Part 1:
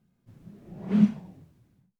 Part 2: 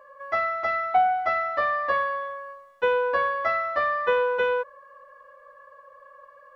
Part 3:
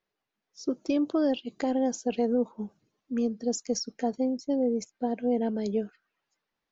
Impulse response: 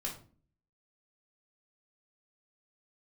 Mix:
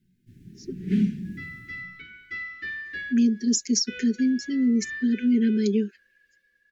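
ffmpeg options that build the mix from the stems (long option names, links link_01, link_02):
-filter_complex "[0:a]alimiter=limit=-18dB:level=0:latency=1:release=263,volume=-1.5dB,asplit=2[link_01][link_02];[link_02]volume=-4.5dB[link_03];[1:a]adelay=1050,volume=-16.5dB[link_04];[2:a]highpass=frequency=220:width=0.5412,highpass=frequency=220:width=1.3066,aecho=1:1:5.1:0.87,volume=-7.5dB,asplit=3[link_05][link_06][link_07];[link_05]atrim=end=0.83,asetpts=PTS-STARTPTS,afade=type=out:start_time=0.826:duration=0.004:curve=hsin[link_08];[link_06]atrim=start=0.83:end=2.85,asetpts=PTS-STARTPTS,volume=0[link_09];[link_07]atrim=start=2.85,asetpts=PTS-STARTPTS,afade=type=in:duration=0.004:curve=hsin[link_10];[link_08][link_09][link_10]concat=n=3:v=0:a=1,asplit=2[link_11][link_12];[link_12]apad=whole_len=335337[link_13];[link_04][link_13]sidechaincompress=threshold=-46dB:ratio=8:attack=16:release=134[link_14];[3:a]atrim=start_sample=2205[link_15];[link_03][link_15]afir=irnorm=-1:irlink=0[link_16];[link_01][link_14][link_11][link_16]amix=inputs=4:normalize=0,asuperstop=centerf=810:order=12:qfactor=0.66,dynaudnorm=framelen=350:gausssize=9:maxgain=15dB"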